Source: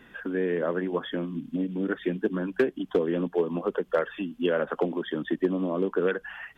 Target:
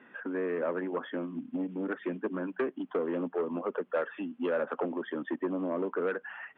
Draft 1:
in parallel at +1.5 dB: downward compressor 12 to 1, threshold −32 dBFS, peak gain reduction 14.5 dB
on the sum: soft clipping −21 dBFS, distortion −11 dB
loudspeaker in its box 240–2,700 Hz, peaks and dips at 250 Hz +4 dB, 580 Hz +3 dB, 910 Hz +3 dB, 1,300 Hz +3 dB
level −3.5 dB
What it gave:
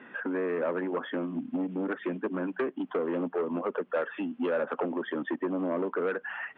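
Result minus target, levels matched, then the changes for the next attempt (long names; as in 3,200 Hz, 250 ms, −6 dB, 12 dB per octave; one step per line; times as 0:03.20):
downward compressor: peak gain reduction +14.5 dB
remove: downward compressor 12 to 1, threshold −32 dBFS, peak gain reduction 14.5 dB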